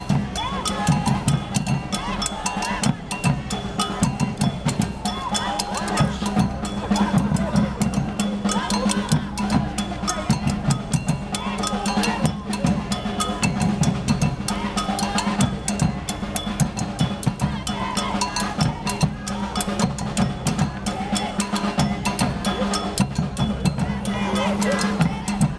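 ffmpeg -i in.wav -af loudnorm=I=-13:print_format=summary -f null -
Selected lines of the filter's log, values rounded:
Input Integrated:    -23.0 LUFS
Input True Peak:      -4.1 dBTP
Input LRA:             1.6 LU
Input Threshold:     -33.0 LUFS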